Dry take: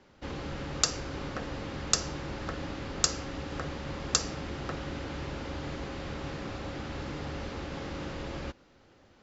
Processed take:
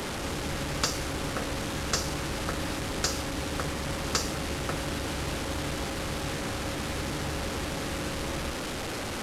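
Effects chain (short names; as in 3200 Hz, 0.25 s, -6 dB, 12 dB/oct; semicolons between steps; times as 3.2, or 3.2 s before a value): delta modulation 64 kbps, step -32 dBFS; gain +4 dB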